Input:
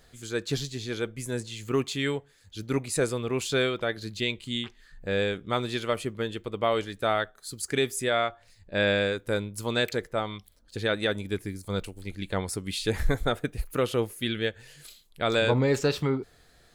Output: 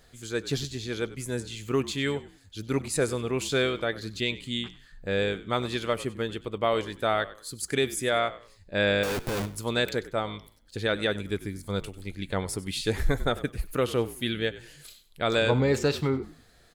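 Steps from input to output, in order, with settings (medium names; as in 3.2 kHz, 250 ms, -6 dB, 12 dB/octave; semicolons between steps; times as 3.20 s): 9.03–9.46 s: Schmitt trigger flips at -45.5 dBFS; frequency-shifting echo 96 ms, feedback 30%, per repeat -53 Hz, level -17 dB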